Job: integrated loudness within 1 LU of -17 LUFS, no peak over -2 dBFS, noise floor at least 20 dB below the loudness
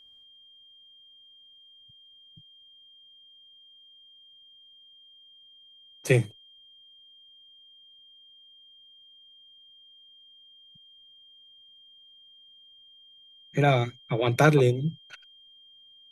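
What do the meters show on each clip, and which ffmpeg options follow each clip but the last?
steady tone 3200 Hz; tone level -52 dBFS; loudness -24.5 LUFS; peak -6.5 dBFS; loudness target -17.0 LUFS
-> -af "bandreject=f=3.2k:w=30"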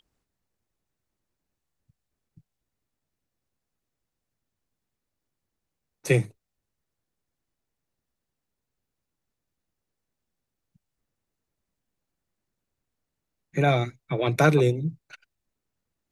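steady tone none; loudness -24.0 LUFS; peak -6.5 dBFS; loudness target -17.0 LUFS
-> -af "volume=7dB,alimiter=limit=-2dB:level=0:latency=1"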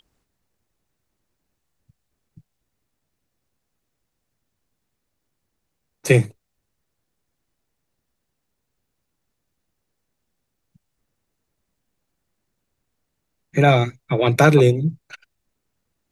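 loudness -17.5 LUFS; peak -2.0 dBFS; noise floor -77 dBFS

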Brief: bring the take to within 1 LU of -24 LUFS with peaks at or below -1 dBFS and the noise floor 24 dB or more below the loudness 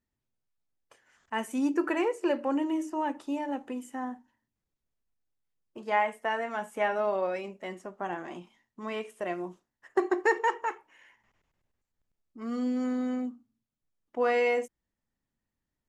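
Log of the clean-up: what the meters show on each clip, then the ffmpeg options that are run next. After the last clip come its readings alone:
loudness -31.0 LUFS; peak -13.0 dBFS; loudness target -24.0 LUFS
-> -af "volume=7dB"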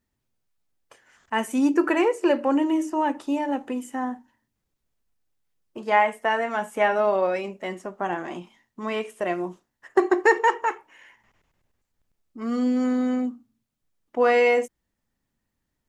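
loudness -24.0 LUFS; peak -6.0 dBFS; noise floor -80 dBFS

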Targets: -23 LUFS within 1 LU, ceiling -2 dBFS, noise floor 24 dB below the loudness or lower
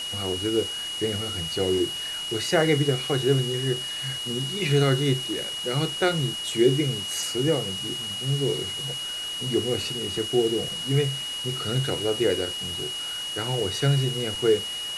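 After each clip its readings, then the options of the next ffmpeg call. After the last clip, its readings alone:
steady tone 2900 Hz; tone level -30 dBFS; noise floor -32 dBFS; noise floor target -49 dBFS; loudness -25.0 LUFS; peak -8.0 dBFS; loudness target -23.0 LUFS
-> -af "bandreject=f=2.9k:w=30"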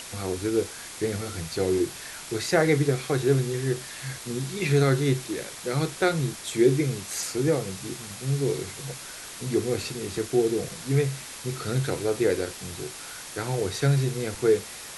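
steady tone none; noise floor -41 dBFS; noise floor target -51 dBFS
-> -af "afftdn=nr=10:nf=-41"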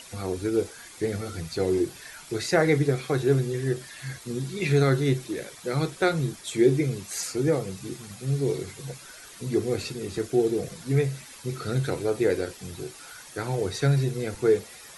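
noise floor -46 dBFS; noise floor target -51 dBFS
-> -af "afftdn=nr=6:nf=-46"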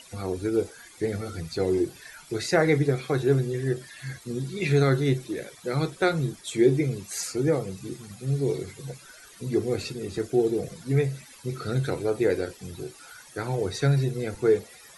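noise floor -50 dBFS; noise floor target -51 dBFS
-> -af "afftdn=nr=6:nf=-50"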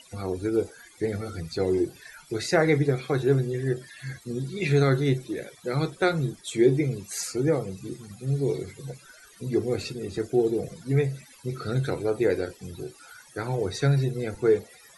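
noise floor -53 dBFS; loudness -27.0 LUFS; peak -8.5 dBFS; loudness target -23.0 LUFS
-> -af "volume=4dB"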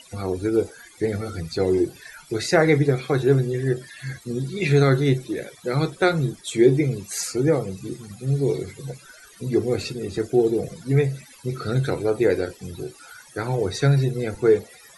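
loudness -23.0 LUFS; peak -4.5 dBFS; noise floor -49 dBFS

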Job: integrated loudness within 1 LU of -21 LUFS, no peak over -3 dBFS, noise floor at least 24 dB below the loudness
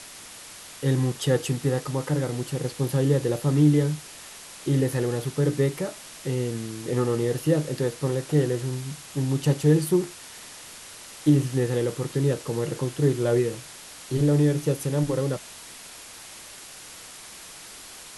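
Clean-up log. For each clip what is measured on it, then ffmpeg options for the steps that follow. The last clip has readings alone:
noise floor -44 dBFS; noise floor target -49 dBFS; loudness -25.0 LUFS; peak -8.0 dBFS; loudness target -21.0 LUFS
-> -af "afftdn=nr=6:nf=-44"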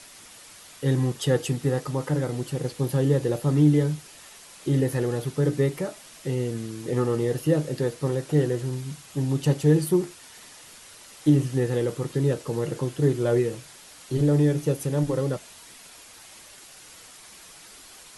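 noise floor -48 dBFS; noise floor target -49 dBFS
-> -af "afftdn=nr=6:nf=-48"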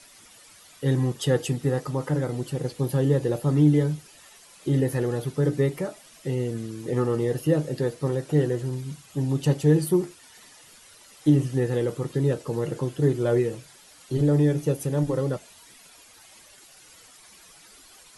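noise floor -52 dBFS; loudness -25.0 LUFS; peak -8.0 dBFS; loudness target -21.0 LUFS
-> -af "volume=4dB"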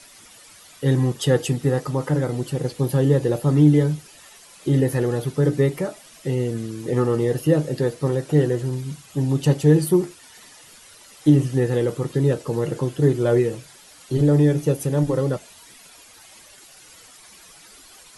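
loudness -21.0 LUFS; peak -4.0 dBFS; noise floor -48 dBFS

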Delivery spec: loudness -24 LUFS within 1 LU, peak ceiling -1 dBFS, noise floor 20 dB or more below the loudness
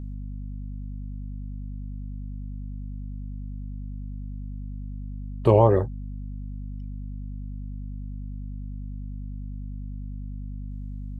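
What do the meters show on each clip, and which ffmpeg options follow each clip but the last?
hum 50 Hz; harmonics up to 250 Hz; hum level -32 dBFS; loudness -31.0 LUFS; peak -4.5 dBFS; loudness target -24.0 LUFS
-> -af "bandreject=f=50:t=h:w=6,bandreject=f=100:t=h:w=6,bandreject=f=150:t=h:w=6,bandreject=f=200:t=h:w=6,bandreject=f=250:t=h:w=6"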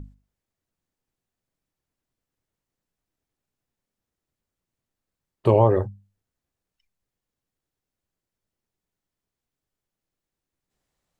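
hum none; loudness -20.5 LUFS; peak -5.0 dBFS; loudness target -24.0 LUFS
-> -af "volume=-3.5dB"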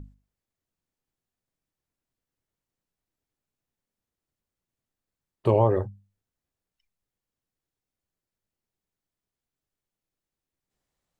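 loudness -24.0 LUFS; peak -8.5 dBFS; noise floor -90 dBFS

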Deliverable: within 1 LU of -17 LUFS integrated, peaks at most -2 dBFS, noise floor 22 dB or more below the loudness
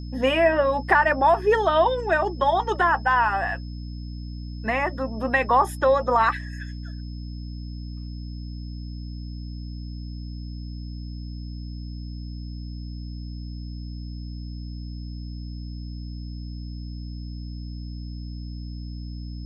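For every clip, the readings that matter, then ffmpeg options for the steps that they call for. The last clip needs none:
hum 60 Hz; harmonics up to 300 Hz; hum level -32 dBFS; steady tone 5200 Hz; tone level -50 dBFS; loudness -22.0 LUFS; peak -5.5 dBFS; loudness target -17.0 LUFS
-> -af "bandreject=f=60:t=h:w=6,bandreject=f=120:t=h:w=6,bandreject=f=180:t=h:w=6,bandreject=f=240:t=h:w=6,bandreject=f=300:t=h:w=6"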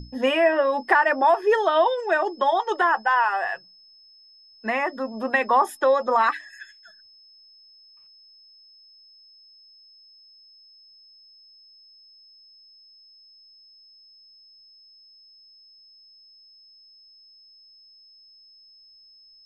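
hum none; steady tone 5200 Hz; tone level -50 dBFS
-> -af "bandreject=f=5.2k:w=30"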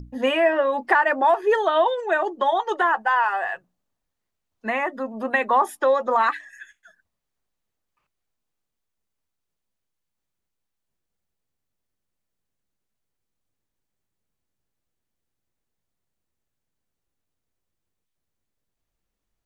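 steady tone none; loudness -21.5 LUFS; peak -5.5 dBFS; loudness target -17.0 LUFS
-> -af "volume=4.5dB,alimiter=limit=-2dB:level=0:latency=1"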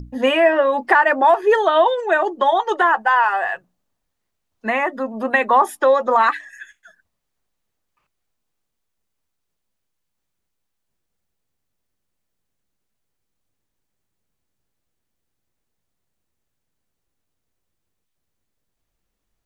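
loudness -17.0 LUFS; peak -2.0 dBFS; noise floor -77 dBFS

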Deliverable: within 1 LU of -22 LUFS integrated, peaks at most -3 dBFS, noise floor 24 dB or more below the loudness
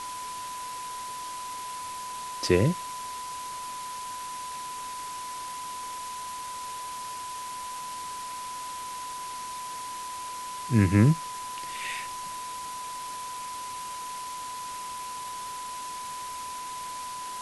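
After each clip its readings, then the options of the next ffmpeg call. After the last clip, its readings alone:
steady tone 1000 Hz; tone level -35 dBFS; noise floor -37 dBFS; noise floor target -57 dBFS; loudness -32.5 LUFS; peak -7.5 dBFS; loudness target -22.0 LUFS
-> -af "bandreject=f=1k:w=30"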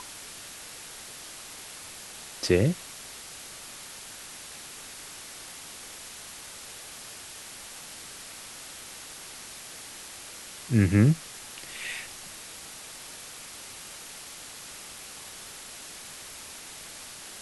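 steady tone none; noise floor -44 dBFS; noise floor target -58 dBFS
-> -af "afftdn=nr=14:nf=-44"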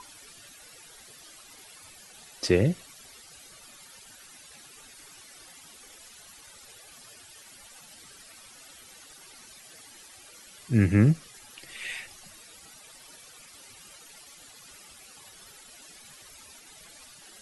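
noise floor -51 dBFS; loudness -26.0 LUFS; peak -8.0 dBFS; loudness target -22.0 LUFS
-> -af "volume=4dB"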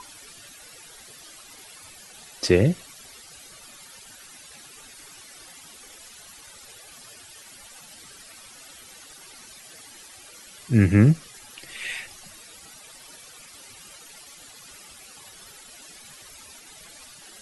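loudness -22.0 LUFS; peak -4.0 dBFS; noise floor -47 dBFS

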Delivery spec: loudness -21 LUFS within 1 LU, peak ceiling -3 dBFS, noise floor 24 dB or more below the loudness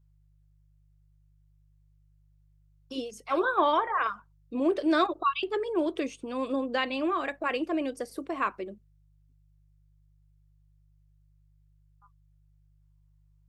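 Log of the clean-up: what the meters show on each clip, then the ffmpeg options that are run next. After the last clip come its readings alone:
hum 50 Hz; harmonics up to 150 Hz; hum level -60 dBFS; loudness -29.5 LUFS; peak -13.0 dBFS; loudness target -21.0 LUFS
-> -af "bandreject=f=50:t=h:w=4,bandreject=f=100:t=h:w=4,bandreject=f=150:t=h:w=4"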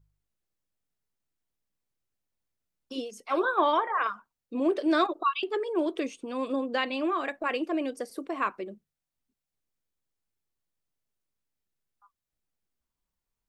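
hum none; loudness -29.0 LUFS; peak -13.0 dBFS; loudness target -21.0 LUFS
-> -af "volume=8dB"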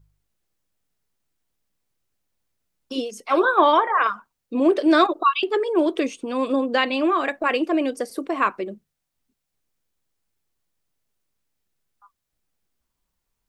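loudness -21.0 LUFS; peak -5.0 dBFS; noise floor -80 dBFS

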